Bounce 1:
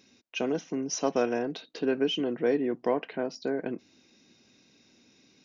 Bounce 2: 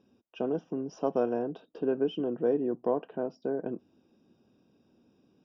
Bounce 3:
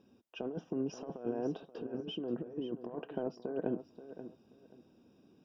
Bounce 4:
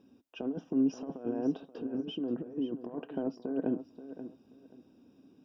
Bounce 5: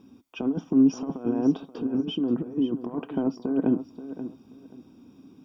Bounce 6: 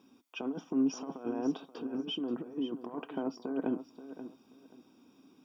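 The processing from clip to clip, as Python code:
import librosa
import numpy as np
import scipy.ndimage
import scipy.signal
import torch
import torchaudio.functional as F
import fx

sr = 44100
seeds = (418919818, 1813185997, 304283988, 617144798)

y1 = np.convolve(x, np.full(21, 1.0 / 21))[:len(x)]
y1 = fx.peak_eq(y1, sr, hz=270.0, db=-3.0, octaves=0.28)
y2 = fx.over_compress(y1, sr, threshold_db=-33.0, ratio=-0.5)
y2 = fx.echo_feedback(y2, sr, ms=531, feedback_pct=22, wet_db=-12.5)
y2 = F.gain(torch.from_numpy(y2), -3.5).numpy()
y3 = fx.peak_eq(y2, sr, hz=270.0, db=11.0, octaves=0.22)
y4 = y3 + 0.46 * np.pad(y3, (int(0.9 * sr / 1000.0), 0))[:len(y3)]
y4 = F.gain(torch.from_numpy(y4), 8.0).numpy()
y5 = fx.highpass(y4, sr, hz=680.0, slope=6)
y5 = F.gain(torch.from_numpy(y5), -1.5).numpy()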